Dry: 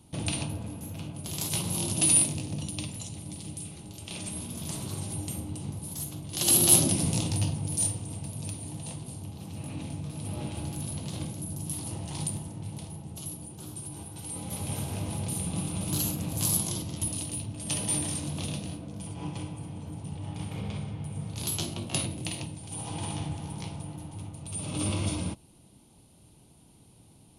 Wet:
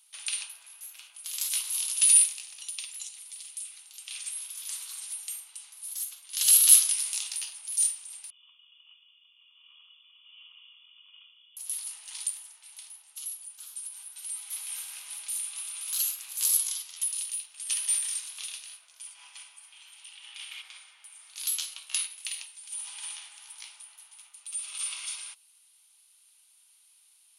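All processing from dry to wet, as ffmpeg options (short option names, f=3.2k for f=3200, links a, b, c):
-filter_complex "[0:a]asettb=1/sr,asplit=3[a][b][c];[a]atrim=end=8.304[d];[b]atrim=start=8.3:end=11.57,asetpts=PTS-STARTPTS,afade=t=in:d=0.004:c=qsin,afade=t=out:st=3.266:d=0.004:c=qsin,asplit=3[e][f][g];[e]bandpass=f=730:t=q:w=8,volume=0dB[h];[f]bandpass=f=1.09k:t=q:w=8,volume=-6dB[i];[g]bandpass=f=2.44k:t=q:w=8,volume=-9dB[j];[h][i][j]amix=inputs=3:normalize=0,lowpass=f=3.1k:t=q:w=0.5098,lowpass=f=3.1k:t=q:w=0.6013,lowpass=f=3.1k:t=q:w=0.9,lowpass=f=3.1k:t=q:w=2.563,afreqshift=-3600[k];[c]atrim=start=11.566[l];[d][k]acrossfade=d=0.004:c1=hsin:c2=qsin[m];[m][l]acrossfade=d=0.004:c1=qsin:c2=hsin,asettb=1/sr,asplit=3[n][o][p];[n]atrim=end=19.724[q];[o]atrim=start=19.72:end=20.62,asetpts=PTS-STARTPTS,afade=t=in:d=0.004:c=qsin,afade=t=out:st=0.896:d=0.004:c=qsin,highpass=480,equalizer=f=3k:t=o:w=1.1:g=10.5[r];[p]atrim=start=20.616[s];[q][r]acrossfade=d=0.004:c1=hsin:c2=qsin[t];[t][s]acrossfade=d=0.004:c1=qsin:c2=hsin,highpass=f=1.4k:w=0.5412,highpass=f=1.4k:w=1.3066,highshelf=f=5.4k:g=5,volume=-1dB"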